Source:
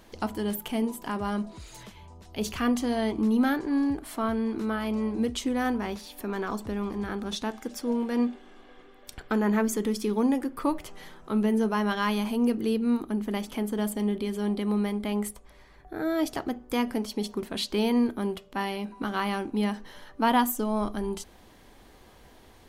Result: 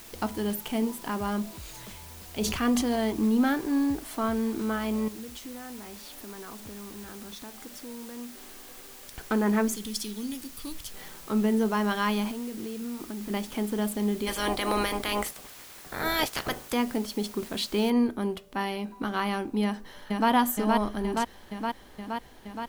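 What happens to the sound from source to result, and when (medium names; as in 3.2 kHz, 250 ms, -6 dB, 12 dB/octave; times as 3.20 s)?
1.53–2.96 s: decay stretcher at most 45 dB/s
5.08–9.17 s: compression 3:1, threshold -43 dBFS
9.75–10.94 s: FFT filter 100 Hz 0 dB, 430 Hz -16 dB, 690 Hz -25 dB, 1.7 kHz -17 dB, 3.4 kHz +6 dB
12.31–13.30 s: compression 12:1, threshold -32 dBFS
14.26–16.72 s: spectral peaks clipped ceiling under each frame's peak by 26 dB
17.90 s: noise floor step -48 dB -68 dB
19.63–20.30 s: echo throw 470 ms, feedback 75%, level -2 dB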